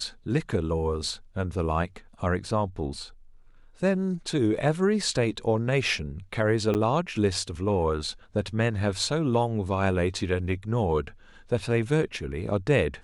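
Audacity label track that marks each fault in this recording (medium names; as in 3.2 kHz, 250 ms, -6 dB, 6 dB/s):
6.740000	6.750000	dropout 9.2 ms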